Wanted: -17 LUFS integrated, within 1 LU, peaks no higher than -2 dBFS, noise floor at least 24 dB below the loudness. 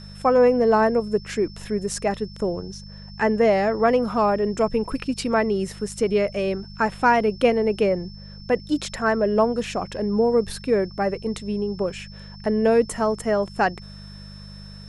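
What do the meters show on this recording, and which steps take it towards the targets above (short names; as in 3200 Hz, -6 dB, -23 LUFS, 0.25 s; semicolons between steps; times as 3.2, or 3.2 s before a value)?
hum 50 Hz; harmonics up to 200 Hz; hum level -38 dBFS; steady tone 5300 Hz; tone level -45 dBFS; loudness -22.5 LUFS; peak -6.5 dBFS; loudness target -17.0 LUFS
-> de-hum 50 Hz, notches 4; notch 5300 Hz, Q 30; gain +5.5 dB; limiter -2 dBFS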